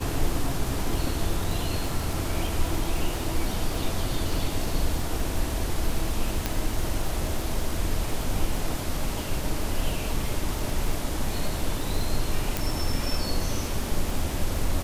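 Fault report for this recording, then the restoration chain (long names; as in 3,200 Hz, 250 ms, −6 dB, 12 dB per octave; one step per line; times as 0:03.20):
surface crackle 37 per second −29 dBFS
0:06.46: click −9 dBFS
0:12.57: click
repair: click removal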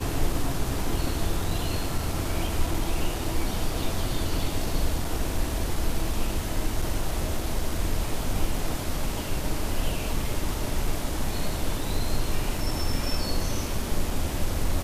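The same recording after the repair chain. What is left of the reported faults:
0:12.57: click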